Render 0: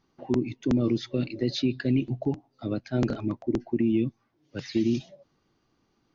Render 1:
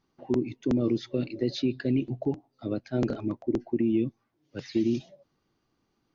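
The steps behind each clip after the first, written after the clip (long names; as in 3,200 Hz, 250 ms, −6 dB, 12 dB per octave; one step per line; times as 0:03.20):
dynamic equaliser 450 Hz, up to +5 dB, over −39 dBFS, Q 0.86
level −4 dB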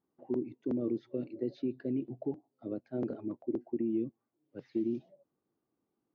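resonant band-pass 390 Hz, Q 0.73
level −6 dB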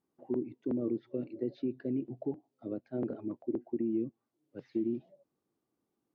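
treble cut that deepens with the level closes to 2,500 Hz, closed at −30 dBFS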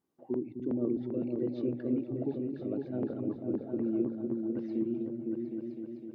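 echo whose low-pass opens from repeat to repeat 254 ms, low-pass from 200 Hz, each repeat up 2 octaves, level 0 dB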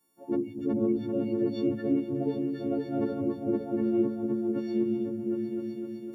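every partial snapped to a pitch grid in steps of 4 semitones
level +4.5 dB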